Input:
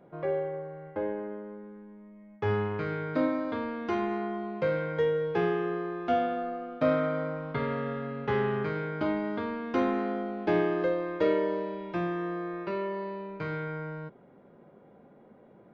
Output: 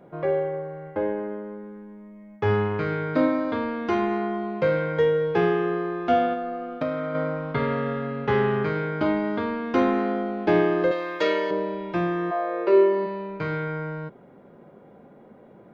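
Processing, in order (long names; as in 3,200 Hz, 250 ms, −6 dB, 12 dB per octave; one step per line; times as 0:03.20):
0:06.33–0:07.15: downward compressor 3 to 1, threshold −33 dBFS, peak gain reduction 9.5 dB
0:10.91–0:11.51: spectral tilt +4 dB per octave
0:12.30–0:13.05: high-pass with resonance 760 Hz → 260 Hz, resonance Q 4.9
level +6 dB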